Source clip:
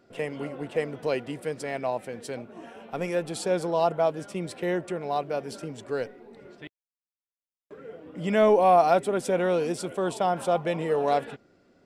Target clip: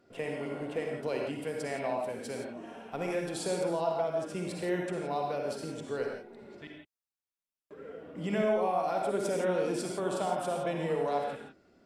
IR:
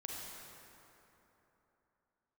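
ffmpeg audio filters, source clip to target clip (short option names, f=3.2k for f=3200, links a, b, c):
-filter_complex "[0:a]acompressor=threshold=-25dB:ratio=5[a];[1:a]atrim=start_sample=2205,atrim=end_sample=6615,asetrate=37044,aresample=44100[b];[a][b]afir=irnorm=-1:irlink=0"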